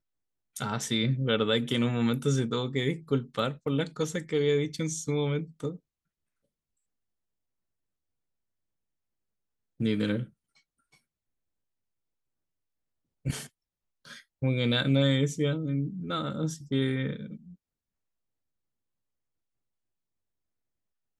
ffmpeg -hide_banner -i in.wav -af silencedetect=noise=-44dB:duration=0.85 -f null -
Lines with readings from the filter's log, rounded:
silence_start: 5.77
silence_end: 9.80 | silence_duration: 4.04
silence_start: 10.26
silence_end: 13.25 | silence_duration: 3.00
silence_start: 17.53
silence_end: 21.19 | silence_duration: 3.66